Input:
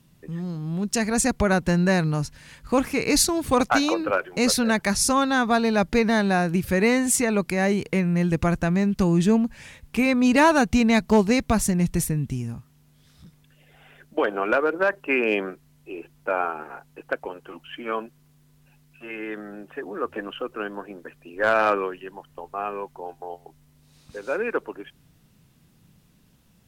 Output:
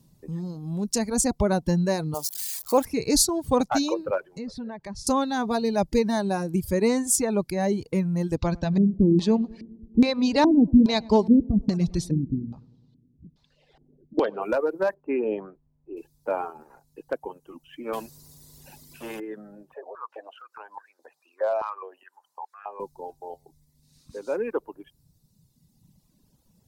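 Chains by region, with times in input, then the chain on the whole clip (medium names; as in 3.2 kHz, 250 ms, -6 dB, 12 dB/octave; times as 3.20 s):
2.14–2.85 s: zero-crossing glitches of -21 dBFS + high-pass 500 Hz 6 dB/octave + peaking EQ 650 Hz +6.5 dB 1.8 oct
4.25–5.07 s: low-pass that closes with the level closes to 2.3 kHz, closed at -17.5 dBFS + compression 2:1, threshold -37 dBFS
8.36–14.42 s: filtered feedback delay 102 ms, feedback 68%, low-pass 2.2 kHz, level -14 dB + LFO low-pass square 1.2 Hz 300–4100 Hz
14.94–15.97 s: low-pass 1.7 kHz + tape noise reduction on one side only decoder only
17.93–19.20 s: high-pass 93 Hz 6 dB/octave + spectrum-flattening compressor 2:1
19.74–22.80 s: treble shelf 8.8 kHz -9.5 dB + compression 1.5:1, threshold -44 dBFS + step-sequenced high-pass 4.8 Hz 590–1600 Hz
whole clip: reverb removal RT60 1.8 s; high-order bell 2 kHz -10.5 dB; band-stop 710 Hz, Q 14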